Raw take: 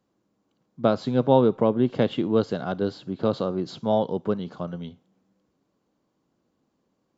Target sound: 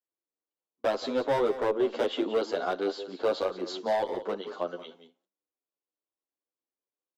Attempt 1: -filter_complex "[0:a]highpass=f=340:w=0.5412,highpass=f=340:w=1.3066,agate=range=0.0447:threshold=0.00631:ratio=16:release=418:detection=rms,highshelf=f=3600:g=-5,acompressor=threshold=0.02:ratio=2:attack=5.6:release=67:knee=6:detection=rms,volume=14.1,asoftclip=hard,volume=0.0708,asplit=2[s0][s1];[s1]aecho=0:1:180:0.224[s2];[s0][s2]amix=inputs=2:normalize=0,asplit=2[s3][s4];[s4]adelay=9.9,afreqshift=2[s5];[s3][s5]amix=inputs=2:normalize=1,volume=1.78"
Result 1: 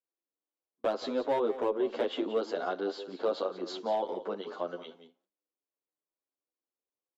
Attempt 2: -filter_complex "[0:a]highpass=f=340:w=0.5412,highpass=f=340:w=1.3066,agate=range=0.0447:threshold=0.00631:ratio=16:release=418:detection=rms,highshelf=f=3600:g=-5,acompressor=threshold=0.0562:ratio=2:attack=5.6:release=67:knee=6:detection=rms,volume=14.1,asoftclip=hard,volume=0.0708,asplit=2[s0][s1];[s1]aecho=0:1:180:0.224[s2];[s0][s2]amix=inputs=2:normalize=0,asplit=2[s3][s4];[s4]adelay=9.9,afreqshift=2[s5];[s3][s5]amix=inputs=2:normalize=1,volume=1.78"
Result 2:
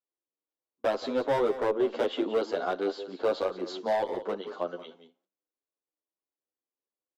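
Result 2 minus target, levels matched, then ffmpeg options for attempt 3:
8 kHz band -3.0 dB
-filter_complex "[0:a]highpass=f=340:w=0.5412,highpass=f=340:w=1.3066,agate=range=0.0447:threshold=0.00631:ratio=16:release=418:detection=rms,acompressor=threshold=0.0562:ratio=2:attack=5.6:release=67:knee=6:detection=rms,volume=14.1,asoftclip=hard,volume=0.0708,asplit=2[s0][s1];[s1]aecho=0:1:180:0.224[s2];[s0][s2]amix=inputs=2:normalize=0,asplit=2[s3][s4];[s4]adelay=9.9,afreqshift=2[s5];[s3][s5]amix=inputs=2:normalize=1,volume=1.78"

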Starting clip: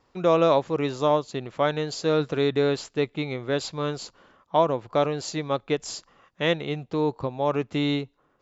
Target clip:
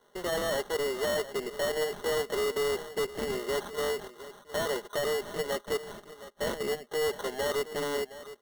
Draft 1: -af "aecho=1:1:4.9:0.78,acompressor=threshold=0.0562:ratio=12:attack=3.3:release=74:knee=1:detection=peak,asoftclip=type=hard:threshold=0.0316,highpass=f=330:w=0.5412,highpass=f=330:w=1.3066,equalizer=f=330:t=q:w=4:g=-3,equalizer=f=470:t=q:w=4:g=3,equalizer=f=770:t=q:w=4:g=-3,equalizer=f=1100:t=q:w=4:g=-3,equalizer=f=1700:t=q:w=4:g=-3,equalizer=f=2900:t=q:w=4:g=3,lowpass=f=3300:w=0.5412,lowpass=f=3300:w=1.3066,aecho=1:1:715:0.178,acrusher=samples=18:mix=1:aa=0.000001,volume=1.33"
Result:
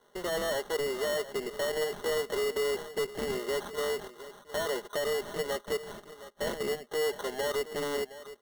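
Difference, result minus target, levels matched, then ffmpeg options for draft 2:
compression: peak gain reduction +14.5 dB
-af "aecho=1:1:4.9:0.78,asoftclip=type=hard:threshold=0.0316,highpass=f=330:w=0.5412,highpass=f=330:w=1.3066,equalizer=f=330:t=q:w=4:g=-3,equalizer=f=470:t=q:w=4:g=3,equalizer=f=770:t=q:w=4:g=-3,equalizer=f=1100:t=q:w=4:g=-3,equalizer=f=1700:t=q:w=4:g=-3,equalizer=f=2900:t=q:w=4:g=3,lowpass=f=3300:w=0.5412,lowpass=f=3300:w=1.3066,aecho=1:1:715:0.178,acrusher=samples=18:mix=1:aa=0.000001,volume=1.33"

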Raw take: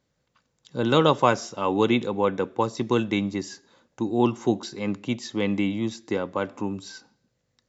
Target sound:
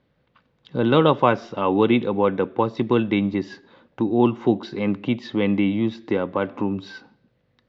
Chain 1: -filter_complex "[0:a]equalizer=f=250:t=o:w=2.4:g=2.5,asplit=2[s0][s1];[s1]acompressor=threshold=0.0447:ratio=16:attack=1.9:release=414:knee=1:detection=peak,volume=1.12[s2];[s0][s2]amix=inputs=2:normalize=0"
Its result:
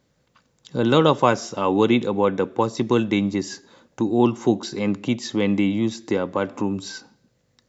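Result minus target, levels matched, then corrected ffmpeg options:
4 kHz band +3.0 dB
-filter_complex "[0:a]lowpass=f=3600:w=0.5412,lowpass=f=3600:w=1.3066,equalizer=f=250:t=o:w=2.4:g=2.5,asplit=2[s0][s1];[s1]acompressor=threshold=0.0447:ratio=16:attack=1.9:release=414:knee=1:detection=peak,volume=1.12[s2];[s0][s2]amix=inputs=2:normalize=0"

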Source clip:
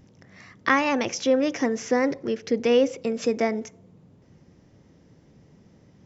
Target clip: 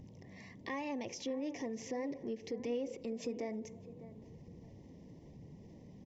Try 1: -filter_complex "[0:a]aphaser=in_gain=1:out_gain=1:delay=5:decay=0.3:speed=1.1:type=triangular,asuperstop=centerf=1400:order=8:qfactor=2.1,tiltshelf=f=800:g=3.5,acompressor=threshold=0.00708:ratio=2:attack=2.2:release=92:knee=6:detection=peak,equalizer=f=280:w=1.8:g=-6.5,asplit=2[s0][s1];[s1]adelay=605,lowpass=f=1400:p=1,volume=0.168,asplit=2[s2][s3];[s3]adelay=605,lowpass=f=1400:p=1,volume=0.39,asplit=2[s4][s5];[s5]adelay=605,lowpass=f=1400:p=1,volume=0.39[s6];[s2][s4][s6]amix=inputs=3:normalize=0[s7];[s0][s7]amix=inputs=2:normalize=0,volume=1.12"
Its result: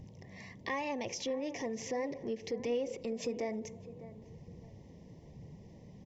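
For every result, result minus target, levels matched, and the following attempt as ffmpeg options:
compression: peak gain reduction -5.5 dB; 250 Hz band -3.0 dB
-filter_complex "[0:a]aphaser=in_gain=1:out_gain=1:delay=5:decay=0.3:speed=1.1:type=triangular,asuperstop=centerf=1400:order=8:qfactor=2.1,tiltshelf=f=800:g=3.5,acompressor=threshold=0.002:ratio=2:attack=2.2:release=92:knee=6:detection=peak,equalizer=f=280:w=1.8:g=-6.5,asplit=2[s0][s1];[s1]adelay=605,lowpass=f=1400:p=1,volume=0.168,asplit=2[s2][s3];[s3]adelay=605,lowpass=f=1400:p=1,volume=0.39,asplit=2[s4][s5];[s5]adelay=605,lowpass=f=1400:p=1,volume=0.39[s6];[s2][s4][s6]amix=inputs=3:normalize=0[s7];[s0][s7]amix=inputs=2:normalize=0,volume=1.12"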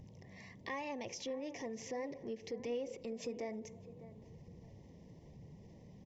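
250 Hz band -2.5 dB
-filter_complex "[0:a]aphaser=in_gain=1:out_gain=1:delay=5:decay=0.3:speed=1.1:type=triangular,asuperstop=centerf=1400:order=8:qfactor=2.1,tiltshelf=f=800:g=3.5,acompressor=threshold=0.002:ratio=2:attack=2.2:release=92:knee=6:detection=peak,asplit=2[s0][s1];[s1]adelay=605,lowpass=f=1400:p=1,volume=0.168,asplit=2[s2][s3];[s3]adelay=605,lowpass=f=1400:p=1,volume=0.39,asplit=2[s4][s5];[s5]adelay=605,lowpass=f=1400:p=1,volume=0.39[s6];[s2][s4][s6]amix=inputs=3:normalize=0[s7];[s0][s7]amix=inputs=2:normalize=0,volume=1.12"

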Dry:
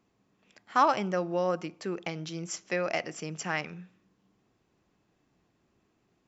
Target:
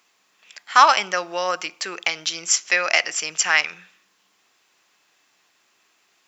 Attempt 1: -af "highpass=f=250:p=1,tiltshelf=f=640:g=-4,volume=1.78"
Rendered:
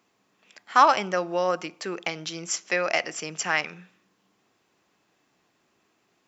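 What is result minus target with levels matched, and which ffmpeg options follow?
500 Hz band +6.5 dB
-af "highpass=f=250:p=1,tiltshelf=f=640:g=-14.5,volume=1.78"

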